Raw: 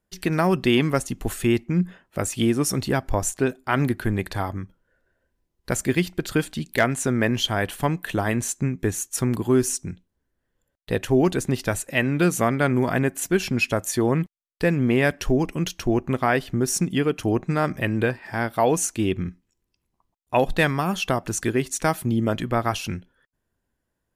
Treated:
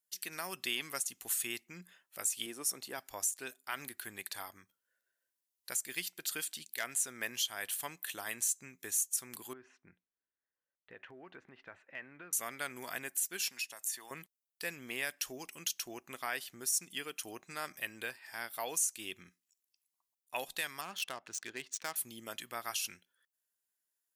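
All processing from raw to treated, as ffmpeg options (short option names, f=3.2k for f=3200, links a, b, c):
-filter_complex "[0:a]asettb=1/sr,asplit=3[a][b][c];[a]atrim=end=2.464[d];[b]atrim=start=2.46:end=2.98,asetpts=PTS-STARTPTS,afade=t=in:d=0.004:c=qsin,afade=t=out:st=0.516:d=0.004:c=qsin,highpass=f=480:p=1,tiltshelf=f=1.1k:g=8[e];[c]atrim=start=2.976[f];[d][e]acrossfade=d=0.004:c1=hsin:c2=qsin[g];[g][f]acrossfade=d=0.004:c1=qsin:c2=hsin,asettb=1/sr,asplit=3[h][i][j];[h]atrim=end=9.534[k];[i]atrim=start=9.53:end=12.33,asetpts=PTS-STARTPTS,afade=t=in:d=0.004:c=qsin,afade=t=out:st=2.796:d=0.004:c=qsin,lowpass=f=2k:w=0.5412,lowpass=f=2k:w=1.3066,acompressor=threshold=-23dB:ratio=10:attack=3.2:release=140:knee=1:detection=peak[l];[j]atrim=start=12.326[m];[k][l]acrossfade=d=0.004:c1=hsin:c2=qsin[n];[n][m]acrossfade=d=0.004:c1=qsin:c2=hsin,asettb=1/sr,asplit=3[o][p][q];[o]atrim=end=13.484[r];[p]atrim=start=13.48:end=14.11,asetpts=PTS-STARTPTS,afade=t=in:d=0.004:c=qsin,afade=t=out:st=0.626:d=0.004:c=qsin,highpass=f=620:p=1,aecho=1:1:1.1:0.39,atrim=end_sample=27783,acrossover=split=1100|2800[s][t][u];[s]acompressor=threshold=-32dB:ratio=4[v];[t]acompressor=threshold=-38dB:ratio=4[w];[u]acompressor=threshold=-36dB:ratio=4[x];[v][w][x]amix=inputs=3:normalize=0[y];[q]atrim=start=14.106[z];[r][y]acrossfade=d=0.004:c1=hsin:c2=qsin[aa];[aa][z]acrossfade=d=0.004:c1=qsin:c2=hsin,asettb=1/sr,asplit=3[ab][ac][ad];[ab]atrim=end=20.814[ae];[ac]atrim=start=20.81:end=21.96,asetpts=PTS-STARTPTS,afade=t=in:d=0.004:c=qsin,afade=t=out:st=1.146:d=0.004:c=qsin,lowpass=7.5k,adynamicsmooth=sensitivity=3.5:basefreq=2.3k[af];[ad]atrim=start=21.956[ag];[ae][af]acrossfade=d=0.004:c1=hsin:c2=qsin[ah];[ah][ag]acrossfade=d=0.004:c1=qsin:c2=hsin,aderivative,alimiter=limit=-21dB:level=0:latency=1:release=197"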